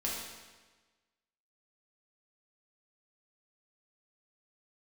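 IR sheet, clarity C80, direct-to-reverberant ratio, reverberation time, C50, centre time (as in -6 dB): 3.0 dB, -5.0 dB, 1.3 s, 0.0 dB, 77 ms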